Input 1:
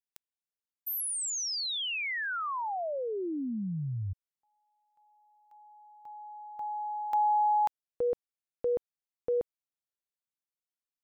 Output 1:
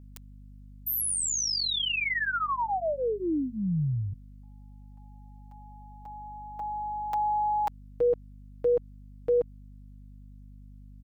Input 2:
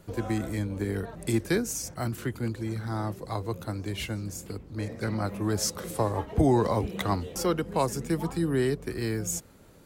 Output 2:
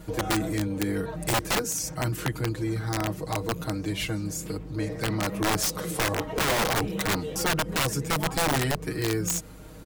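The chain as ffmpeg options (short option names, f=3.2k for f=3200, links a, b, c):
-filter_complex "[0:a]aecho=1:1:6.4:0.97,asplit=2[a][b];[b]acompressor=threshold=-35dB:ratio=12:attack=0.99:release=82:knee=6:detection=rms,volume=2.5dB[c];[a][c]amix=inputs=2:normalize=0,aeval=exprs='(mod(6.68*val(0)+1,2)-1)/6.68':c=same,aeval=exprs='val(0)+0.00562*(sin(2*PI*50*n/s)+sin(2*PI*2*50*n/s)/2+sin(2*PI*3*50*n/s)/3+sin(2*PI*4*50*n/s)/4+sin(2*PI*5*50*n/s)/5)':c=same,volume=-2dB"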